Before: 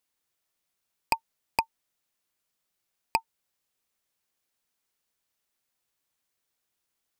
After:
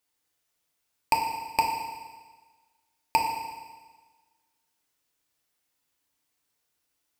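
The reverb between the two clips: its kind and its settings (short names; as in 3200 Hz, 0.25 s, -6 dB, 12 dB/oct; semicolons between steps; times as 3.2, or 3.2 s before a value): FDN reverb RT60 1.4 s, low-frequency decay 1×, high-frequency decay 1×, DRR -0.5 dB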